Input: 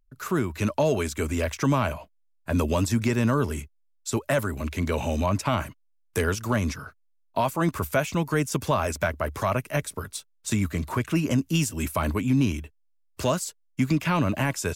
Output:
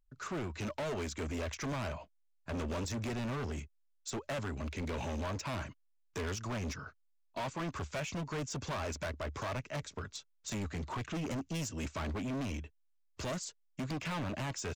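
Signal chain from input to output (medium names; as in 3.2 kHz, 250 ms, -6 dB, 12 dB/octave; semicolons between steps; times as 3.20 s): resampled via 16 kHz; hard clipper -28 dBFS, distortion -5 dB; trim -6.5 dB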